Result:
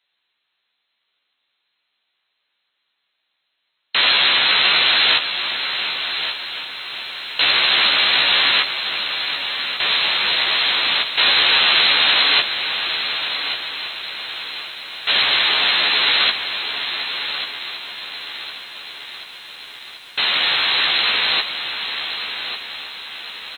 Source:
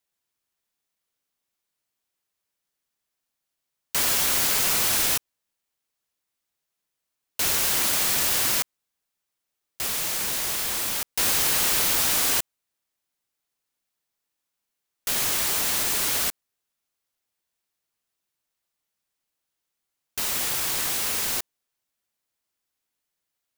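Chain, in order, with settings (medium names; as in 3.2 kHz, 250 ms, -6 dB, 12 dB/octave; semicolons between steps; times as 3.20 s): tilt EQ +4.5 dB/octave; in parallel at -1 dB: peak limiter -2.5 dBFS, peak gain reduction 8.5 dB; on the sum: brick-wall FIR low-pass 4.2 kHz; doubling 14 ms -4 dB; on a send: feedback delay 1141 ms, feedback 30%, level -9.5 dB; on the sum: bit-crushed delay 734 ms, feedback 80%, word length 8-bit, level -14.5 dB; trim +4 dB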